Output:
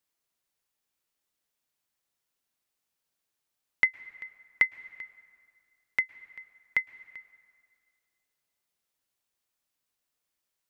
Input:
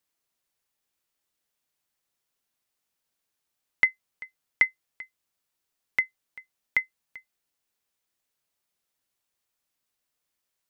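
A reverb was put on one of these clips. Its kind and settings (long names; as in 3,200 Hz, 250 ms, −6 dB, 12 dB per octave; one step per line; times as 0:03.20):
dense smooth reverb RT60 2.3 s, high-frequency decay 0.65×, pre-delay 100 ms, DRR 18 dB
level −2 dB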